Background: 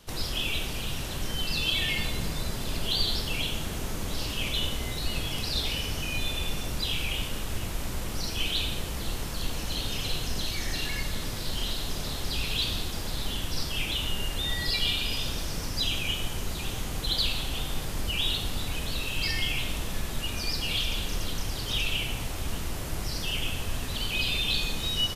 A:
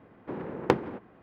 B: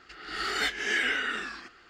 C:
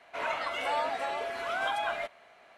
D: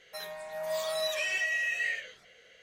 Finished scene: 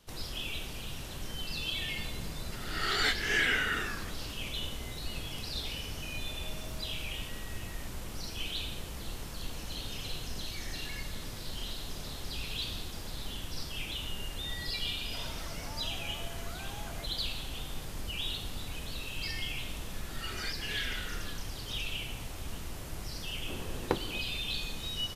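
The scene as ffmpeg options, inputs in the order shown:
-filter_complex "[2:a]asplit=2[s0][s1];[0:a]volume=0.398[s2];[4:a]acompressor=threshold=0.0224:ratio=6:attack=3.2:release=140:knee=1:detection=peak[s3];[3:a]acompressor=threshold=0.01:ratio=6:attack=3.2:release=140:knee=1:detection=peak[s4];[s1]asplit=2[s5][s6];[s6]adelay=5.7,afreqshift=-1.7[s7];[s5][s7]amix=inputs=2:normalize=1[s8];[s0]atrim=end=1.89,asetpts=PTS-STARTPTS,volume=0.891,afade=t=in:d=0.004:c=hsin,afade=t=out:st=1.886:d=0.004:c=hsin,adelay=2430[s9];[s3]atrim=end=2.62,asetpts=PTS-STARTPTS,volume=0.133,afade=t=in:d=0.004:c=hsin,afade=t=out:st=2.616:d=0.004:c=hsin,adelay=5880[s10];[s4]atrim=end=2.57,asetpts=PTS-STARTPTS,volume=0.562,afade=t=in:d=0.004:c=hsin,afade=t=out:st=2.566:d=0.004:c=hsin,adelay=15000[s11];[s8]atrim=end=1.89,asetpts=PTS-STARTPTS,volume=0.335,afade=t=in:d=0.004:c=hsin,afade=t=out:st=1.886:d=0.004:c=hsin,adelay=19820[s12];[1:a]atrim=end=1.22,asetpts=PTS-STARTPTS,volume=0.422,afade=t=in:d=0.004:c=hsin,afade=t=out:st=1.216:d=0.004:c=hsin,adelay=23210[s13];[s2][s9][s10][s11][s12][s13]amix=inputs=6:normalize=0"

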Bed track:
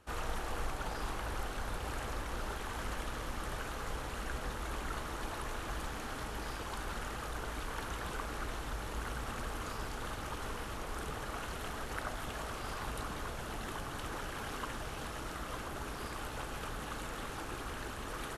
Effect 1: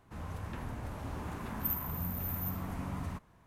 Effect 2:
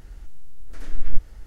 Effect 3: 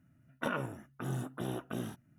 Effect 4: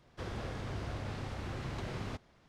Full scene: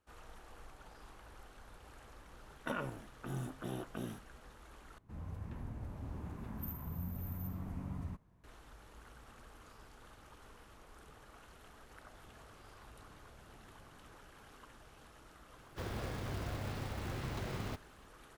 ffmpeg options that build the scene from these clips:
-filter_complex "[4:a]asplit=2[s0][s1];[0:a]volume=0.141[s2];[1:a]lowshelf=f=460:g=10.5[s3];[s0]acompressor=threshold=0.00251:ratio=6:attack=3.2:release=140:knee=1:detection=peak[s4];[s1]acrusher=bits=4:mode=log:mix=0:aa=0.000001[s5];[s2]asplit=2[s6][s7];[s6]atrim=end=4.984[s8];[s3]atrim=end=3.46,asetpts=PTS-STARTPTS,volume=0.224[s9];[s7]atrim=start=8.436[s10];[3:a]atrim=end=2.18,asetpts=PTS-STARTPTS,volume=0.596,afade=t=in:d=0.004:c=hsin,afade=t=out:st=2.176:d=0.004:c=hsin,adelay=2240[s11];[s4]atrim=end=2.48,asetpts=PTS-STARTPTS,volume=0.316,afade=t=in:d=0.004:c=hsin,afade=t=out:st=2.476:d=0.004:c=hsin,adelay=11970[s12];[s5]atrim=end=2.48,asetpts=PTS-STARTPTS,volume=0.891,afade=t=in:d=0.004:c=hsin,afade=t=out:st=2.476:d=0.004:c=hsin,adelay=15590[s13];[s8][s9]acrossfade=d=0.004:c1=hsin:c2=hsin[s14];[s14][s10]acrossfade=d=0.004:c1=hsin:c2=hsin[s15];[s15][s11][s12][s13]amix=inputs=4:normalize=0"

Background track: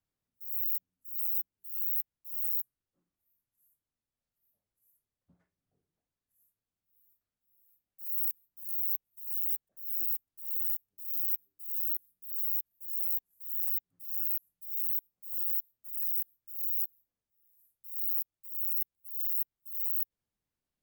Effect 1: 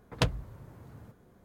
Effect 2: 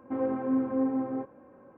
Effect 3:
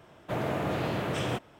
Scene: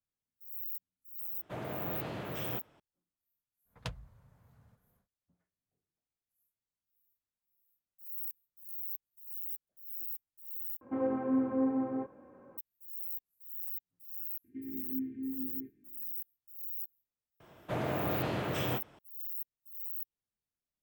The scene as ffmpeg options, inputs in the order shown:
-filter_complex "[3:a]asplit=2[s0][s1];[2:a]asplit=2[s2][s3];[0:a]volume=0.376[s4];[1:a]equalizer=f=340:t=o:w=0.69:g=-14[s5];[s3]asuperstop=centerf=850:order=20:qfactor=0.62[s6];[s1]asplit=2[s7][s8];[s8]adelay=23,volume=0.237[s9];[s7][s9]amix=inputs=2:normalize=0[s10];[s4]asplit=2[s11][s12];[s11]atrim=end=10.814[s13];[s2]atrim=end=1.77,asetpts=PTS-STARTPTS,volume=0.75[s14];[s12]atrim=start=12.576[s15];[s0]atrim=end=1.59,asetpts=PTS-STARTPTS,volume=0.335,afade=t=in:d=0.004:c=hsin,afade=t=out:st=1.586:d=0.004:c=hsin,adelay=1210[s16];[s5]atrim=end=1.44,asetpts=PTS-STARTPTS,volume=0.237,afade=t=in:d=0.1,afade=t=out:st=1.34:d=0.1,adelay=3640[s17];[s6]atrim=end=1.77,asetpts=PTS-STARTPTS,volume=0.316,afade=t=in:d=0.004:c=hsin,afade=t=out:st=1.766:d=0.004:c=hsin,adelay=636804S[s18];[s10]atrim=end=1.59,asetpts=PTS-STARTPTS,volume=0.668,afade=t=in:d=0.004:c=hsin,afade=t=out:st=1.586:d=0.004:c=hsin,adelay=17400[s19];[s13][s14]acrossfade=d=0.004:c1=hsin:c2=hsin[s20];[s20][s15]acrossfade=d=0.004:c1=hsin:c2=hsin[s21];[s21][s16][s17][s18][s19]amix=inputs=5:normalize=0"

